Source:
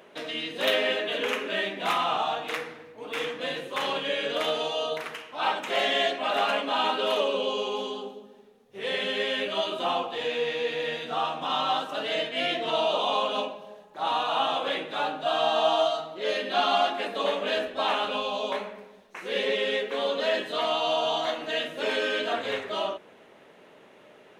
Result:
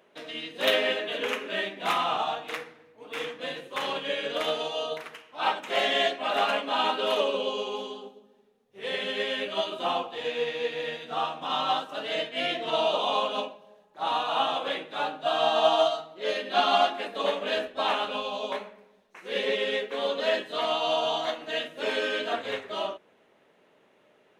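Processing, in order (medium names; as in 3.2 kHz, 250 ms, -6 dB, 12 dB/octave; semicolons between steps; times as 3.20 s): upward expansion 1.5:1, over -43 dBFS; trim +2.5 dB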